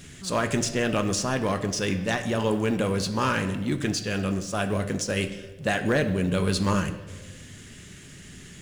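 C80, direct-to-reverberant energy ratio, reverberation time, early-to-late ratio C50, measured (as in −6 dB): 13.5 dB, 8.0 dB, 1.3 s, 11.5 dB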